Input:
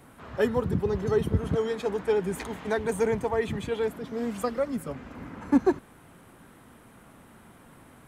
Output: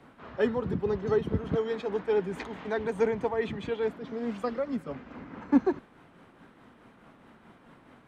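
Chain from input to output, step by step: three-band isolator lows -13 dB, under 170 Hz, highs -21 dB, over 5.4 kHz; tremolo triangle 4.7 Hz, depth 45%; bass shelf 110 Hz +9 dB

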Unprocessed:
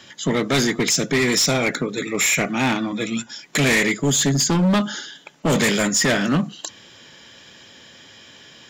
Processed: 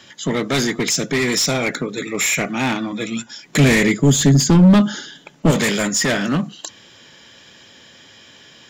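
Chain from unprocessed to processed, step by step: 3.45–5.51 s: bass shelf 360 Hz +10 dB

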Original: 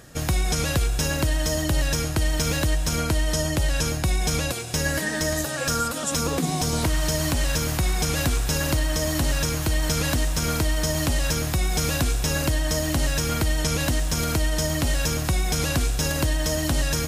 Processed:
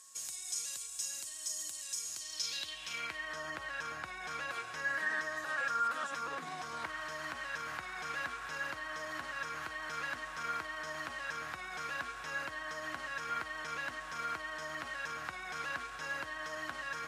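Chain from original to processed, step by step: peak limiter -21 dBFS, peak gain reduction 7.5 dB; whistle 1.1 kHz -44 dBFS; band-pass sweep 7.7 kHz -> 1.5 kHz, 2.06–3.37 s; trim +2 dB

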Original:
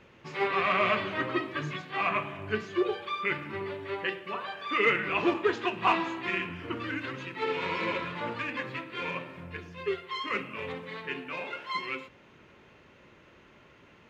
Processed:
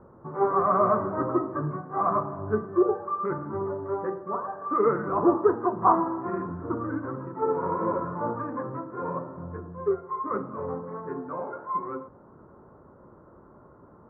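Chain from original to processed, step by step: steep low-pass 1.3 kHz 48 dB/octave; trim +6 dB

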